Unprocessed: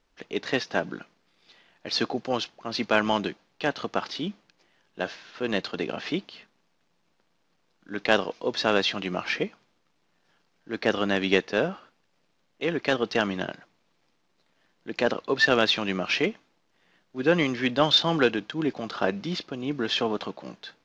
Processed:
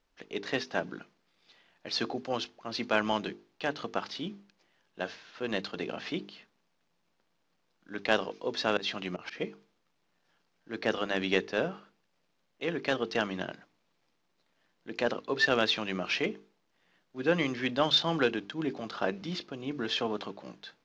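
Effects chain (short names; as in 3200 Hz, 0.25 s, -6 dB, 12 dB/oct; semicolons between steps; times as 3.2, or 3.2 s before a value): 8.77–9.41 auto swell 0.131 s; notches 50/100/150/200/250/300/350/400/450 Hz; gain -5 dB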